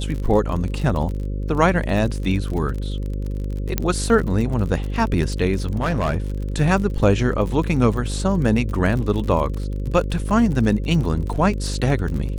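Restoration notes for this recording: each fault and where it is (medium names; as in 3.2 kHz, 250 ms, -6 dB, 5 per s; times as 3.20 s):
buzz 50 Hz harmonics 11 -25 dBFS
crackle 44 per s -27 dBFS
3.78 s: pop -5 dBFS
5.65–6.18 s: clipped -16.5 dBFS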